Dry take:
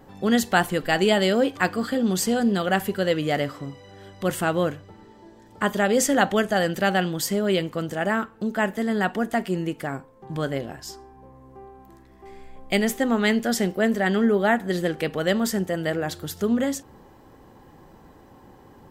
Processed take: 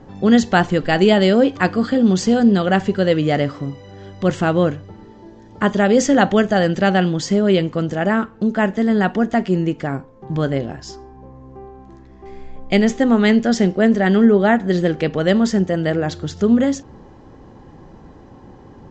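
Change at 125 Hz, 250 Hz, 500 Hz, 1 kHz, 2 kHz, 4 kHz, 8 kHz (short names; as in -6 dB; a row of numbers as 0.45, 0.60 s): +9.0, +8.5, +6.0, +4.5, +3.0, +2.5, -1.0 dB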